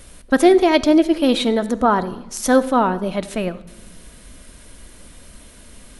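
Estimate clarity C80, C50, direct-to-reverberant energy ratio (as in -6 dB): 18.0 dB, 16.0 dB, 11.0 dB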